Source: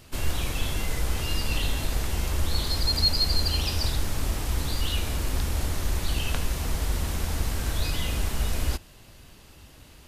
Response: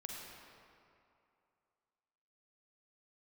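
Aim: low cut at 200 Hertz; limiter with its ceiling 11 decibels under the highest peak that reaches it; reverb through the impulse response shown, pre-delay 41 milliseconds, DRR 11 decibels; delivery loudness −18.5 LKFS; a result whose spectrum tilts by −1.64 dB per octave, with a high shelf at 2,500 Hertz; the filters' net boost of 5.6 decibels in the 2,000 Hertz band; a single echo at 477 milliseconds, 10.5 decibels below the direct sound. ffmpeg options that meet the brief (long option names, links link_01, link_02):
-filter_complex "[0:a]highpass=200,equalizer=frequency=2000:width_type=o:gain=4,highshelf=frequency=2500:gain=6,alimiter=limit=-19.5dB:level=0:latency=1,aecho=1:1:477:0.299,asplit=2[link_01][link_02];[1:a]atrim=start_sample=2205,adelay=41[link_03];[link_02][link_03]afir=irnorm=-1:irlink=0,volume=-9dB[link_04];[link_01][link_04]amix=inputs=2:normalize=0,volume=9dB"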